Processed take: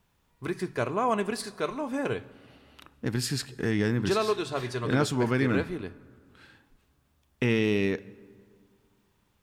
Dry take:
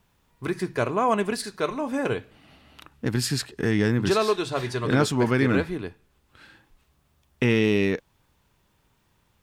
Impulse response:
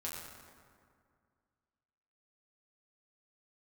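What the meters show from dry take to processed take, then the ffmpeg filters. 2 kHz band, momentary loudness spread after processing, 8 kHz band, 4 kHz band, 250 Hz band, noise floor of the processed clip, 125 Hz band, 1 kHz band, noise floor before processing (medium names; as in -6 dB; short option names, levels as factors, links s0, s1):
-4.0 dB, 11 LU, -4.0 dB, -4.0 dB, -4.0 dB, -70 dBFS, -4.0 dB, -4.0 dB, -67 dBFS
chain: -filter_complex "[0:a]asplit=2[s0][s1];[1:a]atrim=start_sample=2205,adelay=31[s2];[s1][s2]afir=irnorm=-1:irlink=0,volume=0.119[s3];[s0][s3]amix=inputs=2:normalize=0,volume=0.631"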